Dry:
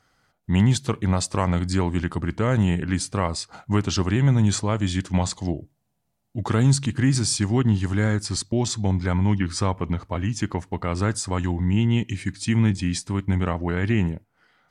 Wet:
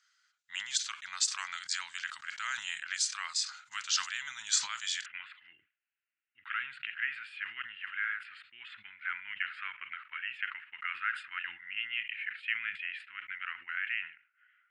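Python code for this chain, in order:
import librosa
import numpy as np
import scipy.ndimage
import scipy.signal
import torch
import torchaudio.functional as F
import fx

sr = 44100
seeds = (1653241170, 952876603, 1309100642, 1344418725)

y = fx.ellip_bandpass(x, sr, low_hz=1400.0, high_hz=fx.steps((0.0, 7300.0), (5.04, 2800.0)), order=3, stop_db=50)
y = fx.rider(y, sr, range_db=4, speed_s=2.0)
y = fx.high_shelf(y, sr, hz=2300.0, db=8.0)
y = fx.sustainer(y, sr, db_per_s=140.0)
y = y * 10.0 ** (-4.5 / 20.0)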